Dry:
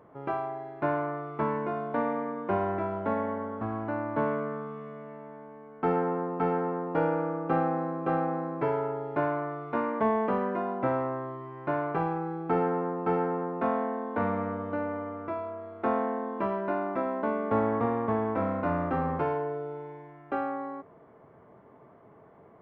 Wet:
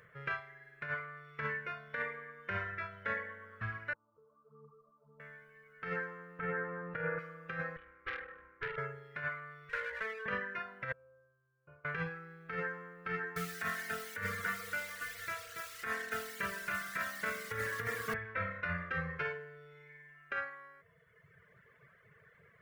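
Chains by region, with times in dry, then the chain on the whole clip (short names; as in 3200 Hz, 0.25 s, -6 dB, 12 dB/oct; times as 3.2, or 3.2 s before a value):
3.93–5.2 compressor 16:1, threshold -36 dBFS + rippled Chebyshev low-pass 1300 Hz, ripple 9 dB + ensemble effect
6.39–7.19 LPF 1900 Hz + fast leveller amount 70%
7.76–8.78 LPF 1600 Hz + fixed phaser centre 610 Hz, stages 6 + tube stage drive 27 dB, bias 0.65
9.69–10.26 minimum comb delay 2 ms + three-band isolator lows -12 dB, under 200 Hz, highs -12 dB, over 2100 Hz + compressor 4:1, threshold -31 dBFS
10.92–11.85 running mean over 23 samples + resonator 75 Hz, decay 1.4 s, harmonics odd, mix 90%
13.08–18.14 notch 530 Hz, Q 6.9 + feedback echo 0.152 s, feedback 48%, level -17 dB + lo-fi delay 0.282 s, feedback 35%, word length 8-bit, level -3.5 dB
whole clip: reverb removal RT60 1.5 s; EQ curve 160 Hz 0 dB, 290 Hz -26 dB, 480 Hz -3 dB, 810 Hz -21 dB, 1700 Hz +15 dB, 2600 Hz +10 dB; negative-ratio compressor -32 dBFS, ratio -0.5; gain -3 dB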